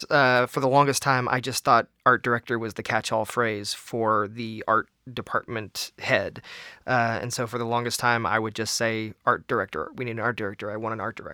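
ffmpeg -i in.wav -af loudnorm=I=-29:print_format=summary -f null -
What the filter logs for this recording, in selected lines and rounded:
Input Integrated:    -25.4 LUFS
Input True Peak:      -4.1 dBTP
Input LRA:             3.8 LU
Input Threshold:     -35.5 LUFS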